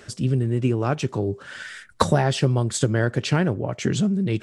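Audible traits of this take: noise floor -49 dBFS; spectral tilt -6.0 dB/octave

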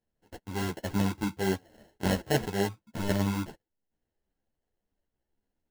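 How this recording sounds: aliases and images of a low sample rate 1.2 kHz, jitter 0%; a shimmering, thickened sound

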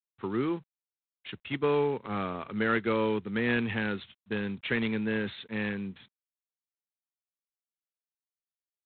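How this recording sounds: G.726

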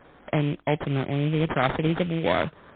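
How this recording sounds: aliases and images of a low sample rate 2.8 kHz, jitter 20%; MP3

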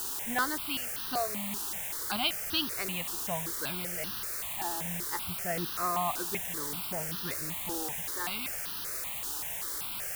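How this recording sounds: a quantiser's noise floor 6-bit, dither triangular; notches that jump at a steady rate 5.2 Hz 580–2200 Hz

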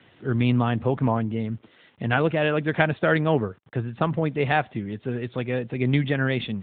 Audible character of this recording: a quantiser's noise floor 10-bit, dither none; AMR-NB

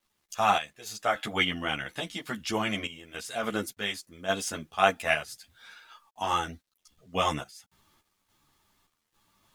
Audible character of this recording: random-step tremolo, depth 85%; a quantiser's noise floor 12-bit, dither none; a shimmering, thickened sound

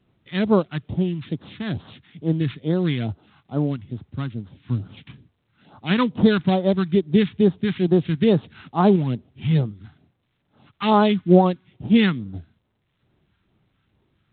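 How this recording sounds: a buzz of ramps at a fixed pitch in blocks of 8 samples; phasing stages 2, 2.3 Hz, lowest notch 520–2300 Hz; A-law

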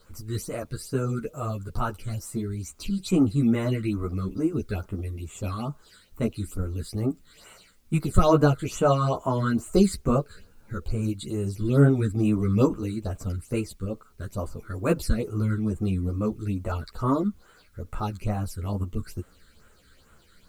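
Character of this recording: phasing stages 8, 2.3 Hz, lowest notch 750–5000 Hz; a quantiser's noise floor 12-bit, dither triangular; a shimmering, thickened sound

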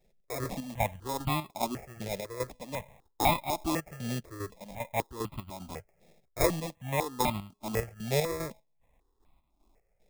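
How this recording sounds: chopped level 2.5 Hz, depth 60%, duty 50%; aliases and images of a low sample rate 1.5 kHz, jitter 0%; notches that jump at a steady rate 4 Hz 290–1700 Hz

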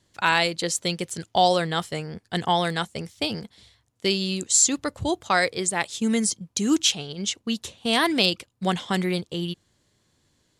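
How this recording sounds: noise floor -69 dBFS; spectral tilt -2.5 dB/octave

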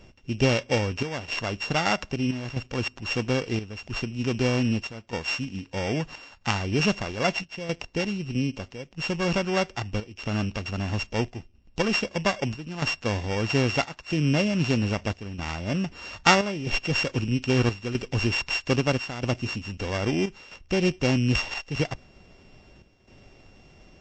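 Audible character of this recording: a buzz of ramps at a fixed pitch in blocks of 16 samples; chopped level 0.78 Hz, depth 65%, duty 80%; Vorbis

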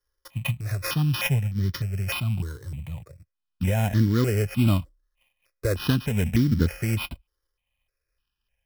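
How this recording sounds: a buzz of ramps at a fixed pitch in blocks of 8 samples; tremolo triangle 2.6 Hz, depth 40%; aliases and images of a low sample rate 8 kHz, jitter 0%; notches that jump at a steady rate 3.3 Hz 690–2600 Hz

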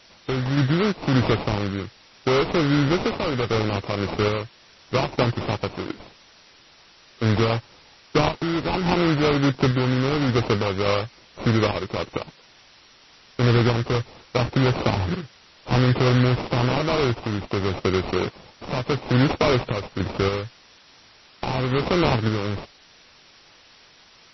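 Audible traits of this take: aliases and images of a low sample rate 1.7 kHz, jitter 20%; random-step tremolo; a quantiser's noise floor 8-bit, dither triangular; MP3

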